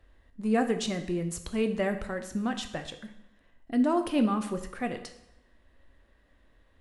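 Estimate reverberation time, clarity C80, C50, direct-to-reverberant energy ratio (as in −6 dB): 0.80 s, 13.5 dB, 11.0 dB, 7.0 dB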